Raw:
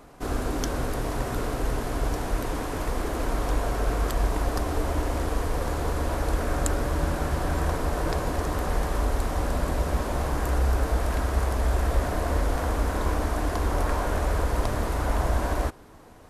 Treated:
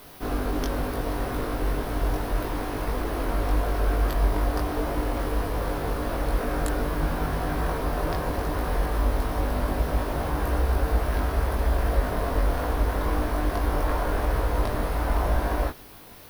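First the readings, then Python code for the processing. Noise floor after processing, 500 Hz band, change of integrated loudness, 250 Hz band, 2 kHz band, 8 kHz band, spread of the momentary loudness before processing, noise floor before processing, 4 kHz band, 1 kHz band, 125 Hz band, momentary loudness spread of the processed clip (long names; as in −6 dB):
−33 dBFS, +0.5 dB, +0.5 dB, +1.0 dB, +0.5 dB, −5.0 dB, 4 LU, −33 dBFS, −0.5 dB, +0.5 dB, 0.0 dB, 4 LU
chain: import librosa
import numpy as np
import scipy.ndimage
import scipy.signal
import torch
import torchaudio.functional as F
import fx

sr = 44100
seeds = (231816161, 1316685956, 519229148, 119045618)

y = fx.quant_dither(x, sr, seeds[0], bits=8, dither='triangular')
y = fx.peak_eq(y, sr, hz=7300.0, db=-12.5, octaves=0.57)
y = fx.doubler(y, sr, ms=20.0, db=-2.5)
y = F.gain(torch.from_numpy(y), -1.5).numpy()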